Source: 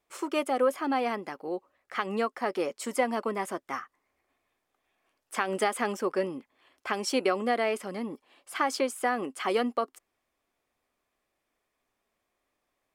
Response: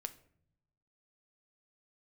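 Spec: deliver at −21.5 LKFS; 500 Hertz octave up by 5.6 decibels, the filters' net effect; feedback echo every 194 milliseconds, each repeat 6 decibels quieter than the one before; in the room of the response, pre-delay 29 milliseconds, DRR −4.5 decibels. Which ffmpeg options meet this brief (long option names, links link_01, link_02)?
-filter_complex "[0:a]equalizer=frequency=500:width_type=o:gain=6.5,aecho=1:1:194|388|582|776|970|1164:0.501|0.251|0.125|0.0626|0.0313|0.0157,asplit=2[link_01][link_02];[1:a]atrim=start_sample=2205,adelay=29[link_03];[link_02][link_03]afir=irnorm=-1:irlink=0,volume=7dB[link_04];[link_01][link_04]amix=inputs=2:normalize=0,volume=-1.5dB"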